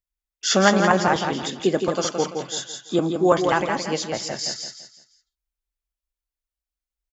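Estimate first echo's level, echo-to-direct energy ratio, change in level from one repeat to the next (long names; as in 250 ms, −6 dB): −6.0 dB, −5.5 dB, −9.0 dB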